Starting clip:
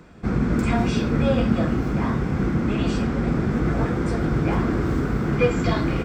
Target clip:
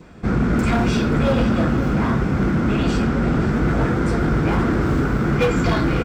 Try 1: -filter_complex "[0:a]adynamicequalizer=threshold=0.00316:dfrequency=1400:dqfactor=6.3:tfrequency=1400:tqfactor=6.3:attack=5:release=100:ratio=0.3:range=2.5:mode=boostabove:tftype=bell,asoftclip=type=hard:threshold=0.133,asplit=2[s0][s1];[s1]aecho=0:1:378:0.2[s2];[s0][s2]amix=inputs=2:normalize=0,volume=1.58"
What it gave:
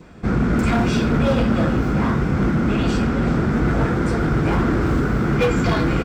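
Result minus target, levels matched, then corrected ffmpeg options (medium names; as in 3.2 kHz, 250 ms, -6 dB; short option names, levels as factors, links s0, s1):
echo 152 ms early
-filter_complex "[0:a]adynamicequalizer=threshold=0.00316:dfrequency=1400:dqfactor=6.3:tfrequency=1400:tqfactor=6.3:attack=5:release=100:ratio=0.3:range=2.5:mode=boostabove:tftype=bell,asoftclip=type=hard:threshold=0.133,asplit=2[s0][s1];[s1]aecho=0:1:530:0.2[s2];[s0][s2]amix=inputs=2:normalize=0,volume=1.58"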